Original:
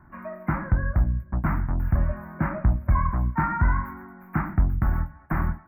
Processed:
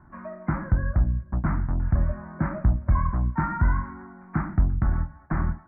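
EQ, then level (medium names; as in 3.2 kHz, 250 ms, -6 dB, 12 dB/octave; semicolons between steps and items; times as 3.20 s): low-pass 1.7 kHz 12 dB/octave; dynamic bell 890 Hz, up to -3 dB, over -40 dBFS, Q 1.3; 0.0 dB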